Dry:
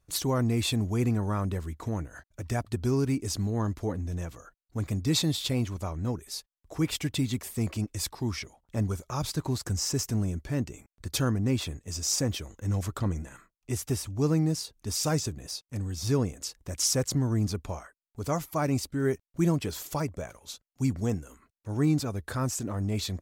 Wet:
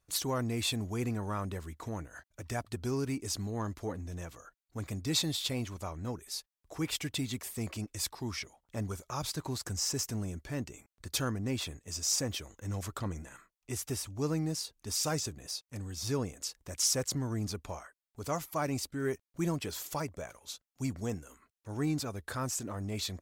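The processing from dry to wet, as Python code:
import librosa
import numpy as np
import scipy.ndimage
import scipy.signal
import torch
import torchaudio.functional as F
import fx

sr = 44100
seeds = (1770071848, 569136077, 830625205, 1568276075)

p1 = 10.0 ** (-25.5 / 20.0) * np.tanh(x / 10.0 ** (-25.5 / 20.0))
p2 = x + (p1 * librosa.db_to_amplitude(-11.5))
p3 = fx.low_shelf(p2, sr, hz=400.0, db=-7.0)
y = p3 * librosa.db_to_amplitude(-3.5)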